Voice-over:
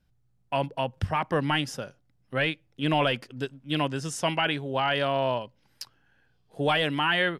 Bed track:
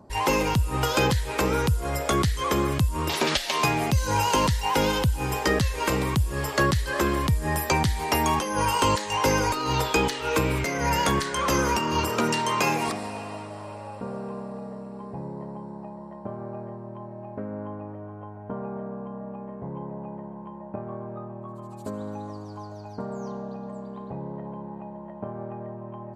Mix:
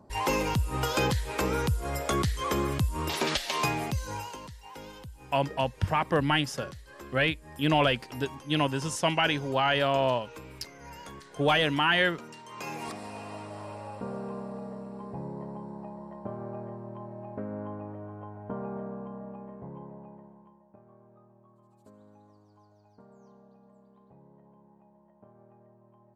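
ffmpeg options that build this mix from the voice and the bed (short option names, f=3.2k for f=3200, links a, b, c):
-filter_complex "[0:a]adelay=4800,volume=0.5dB[a];[1:a]volume=15dB,afade=t=out:st=3.62:d=0.76:silence=0.133352,afade=t=in:st=12.48:d=1.13:silence=0.105925,afade=t=out:st=18.77:d=1.87:silence=0.112202[b];[a][b]amix=inputs=2:normalize=0"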